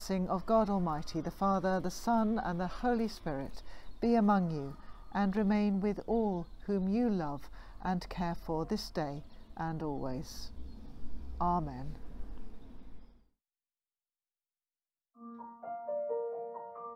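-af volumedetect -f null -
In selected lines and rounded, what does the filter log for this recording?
mean_volume: -34.6 dB
max_volume: -18.1 dB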